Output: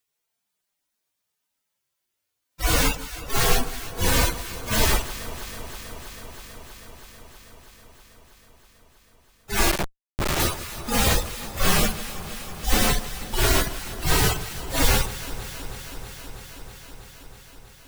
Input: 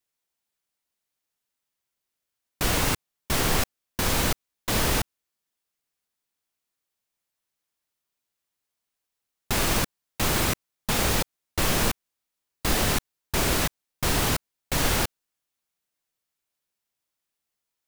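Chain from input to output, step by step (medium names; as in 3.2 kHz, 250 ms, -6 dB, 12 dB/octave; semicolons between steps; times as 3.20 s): harmonic-percussive separation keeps harmonic; echo whose repeats swap between lows and highs 161 ms, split 1.3 kHz, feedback 89%, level -13.5 dB; 9.71–10.40 s: Schmitt trigger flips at -32 dBFS; trim +8 dB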